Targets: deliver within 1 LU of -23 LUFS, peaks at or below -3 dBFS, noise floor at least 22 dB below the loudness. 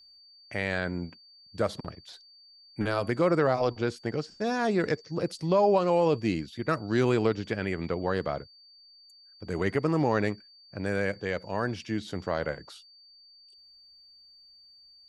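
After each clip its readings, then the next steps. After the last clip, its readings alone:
steady tone 4600 Hz; tone level -53 dBFS; loudness -28.5 LUFS; peak -11.5 dBFS; loudness target -23.0 LUFS
-> notch 4600 Hz, Q 30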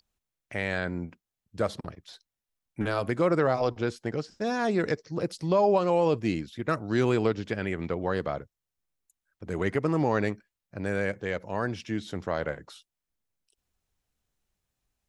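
steady tone none; loudness -29.0 LUFS; peak -11.5 dBFS; loudness target -23.0 LUFS
-> gain +6 dB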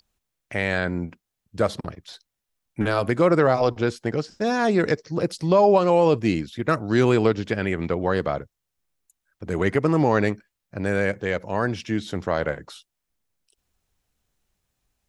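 loudness -23.0 LUFS; peak -5.5 dBFS; noise floor -82 dBFS

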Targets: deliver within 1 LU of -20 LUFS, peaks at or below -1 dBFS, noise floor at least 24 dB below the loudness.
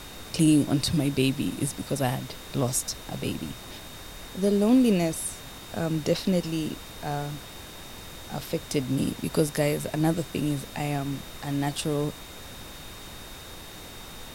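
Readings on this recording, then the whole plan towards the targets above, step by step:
steady tone 3700 Hz; tone level -48 dBFS; noise floor -43 dBFS; noise floor target -51 dBFS; loudness -27.0 LUFS; peak -10.0 dBFS; loudness target -20.0 LUFS
-> notch 3700 Hz, Q 30; noise print and reduce 8 dB; gain +7 dB

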